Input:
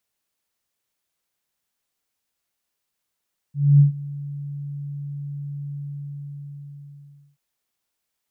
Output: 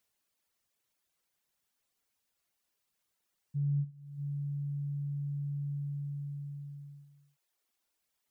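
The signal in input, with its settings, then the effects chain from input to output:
ADSR sine 143 Hz, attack 256 ms, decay 122 ms, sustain -20.5 dB, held 2.19 s, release 1640 ms -8 dBFS
reverb removal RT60 0.8 s; compression 4:1, threshold -33 dBFS

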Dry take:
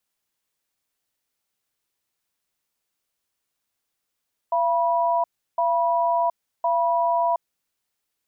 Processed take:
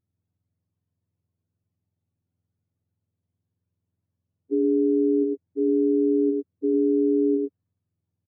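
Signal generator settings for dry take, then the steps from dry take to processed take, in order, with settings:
cadence 681 Hz, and 975 Hz, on 0.72 s, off 0.34 s, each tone -21 dBFS 3.15 s
spectrum inverted on a logarithmic axis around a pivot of 530 Hz; on a send: delay 105 ms -3.5 dB

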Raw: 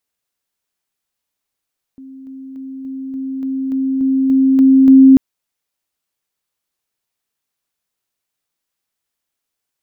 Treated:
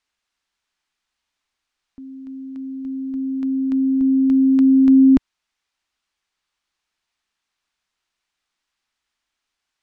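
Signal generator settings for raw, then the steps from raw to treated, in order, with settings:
level ladder 266 Hz -32.5 dBFS, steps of 3 dB, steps 11, 0.29 s 0.00 s
graphic EQ 125/250/500 Hz -12/-3/-10 dB; in parallel at +2.5 dB: peak limiter -20.5 dBFS; on the sum: distance through air 100 m

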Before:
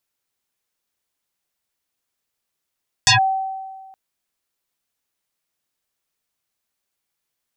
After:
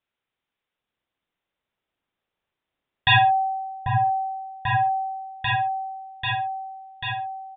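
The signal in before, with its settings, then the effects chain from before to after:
FM tone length 0.87 s, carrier 768 Hz, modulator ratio 1.15, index 8.3, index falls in 0.12 s linear, decay 1.57 s, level -8.5 dB
delay with an opening low-pass 791 ms, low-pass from 750 Hz, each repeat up 1 oct, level 0 dB; resampled via 8 kHz; on a send: feedback delay 64 ms, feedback 18%, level -11.5 dB

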